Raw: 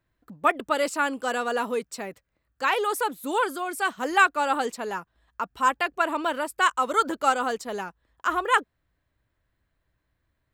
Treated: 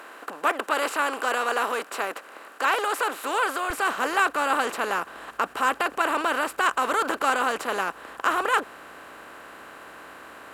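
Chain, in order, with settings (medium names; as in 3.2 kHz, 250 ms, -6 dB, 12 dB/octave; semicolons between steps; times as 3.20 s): spectral levelling over time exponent 0.4; high-pass 300 Hz 12 dB/octave, from 3.70 s 60 Hz; trim -6 dB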